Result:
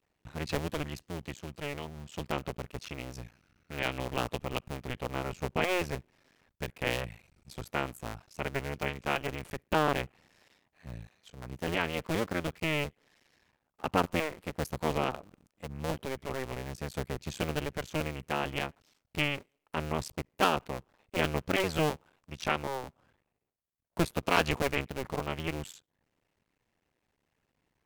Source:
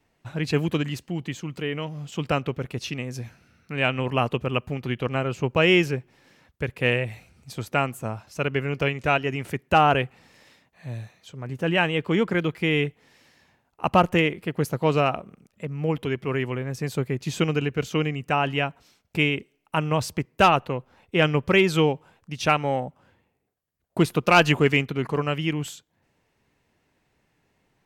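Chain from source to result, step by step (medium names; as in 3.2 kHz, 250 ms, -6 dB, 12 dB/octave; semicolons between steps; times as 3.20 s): cycle switcher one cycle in 2, muted; trim -6.5 dB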